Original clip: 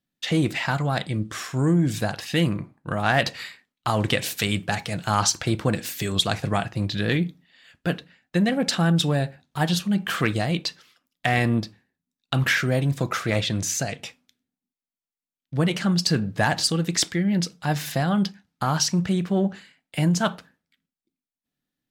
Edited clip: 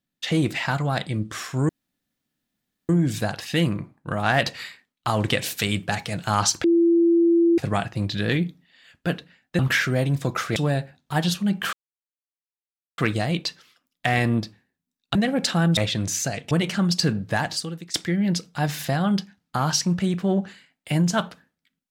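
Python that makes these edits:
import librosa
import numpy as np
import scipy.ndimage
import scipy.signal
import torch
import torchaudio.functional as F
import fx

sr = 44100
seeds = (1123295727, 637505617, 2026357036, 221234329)

y = fx.edit(x, sr, fx.insert_room_tone(at_s=1.69, length_s=1.2),
    fx.bleep(start_s=5.44, length_s=0.94, hz=338.0, db=-14.0),
    fx.swap(start_s=8.39, length_s=0.62, other_s=12.35, other_length_s=0.97),
    fx.insert_silence(at_s=10.18, length_s=1.25),
    fx.cut(start_s=14.06, length_s=1.52),
    fx.fade_out_to(start_s=16.24, length_s=0.77, floor_db=-20.5), tone=tone)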